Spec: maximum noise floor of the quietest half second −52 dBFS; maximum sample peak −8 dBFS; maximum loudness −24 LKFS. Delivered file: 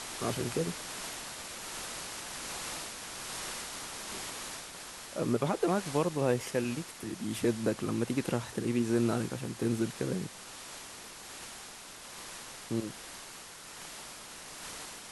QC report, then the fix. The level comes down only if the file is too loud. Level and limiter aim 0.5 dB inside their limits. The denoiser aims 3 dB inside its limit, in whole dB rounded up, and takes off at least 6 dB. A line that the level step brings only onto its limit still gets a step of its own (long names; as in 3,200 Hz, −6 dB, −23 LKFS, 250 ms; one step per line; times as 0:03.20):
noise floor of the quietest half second −48 dBFS: out of spec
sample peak −14.5 dBFS: in spec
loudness −35.5 LKFS: in spec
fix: broadband denoise 7 dB, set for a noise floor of −48 dBFS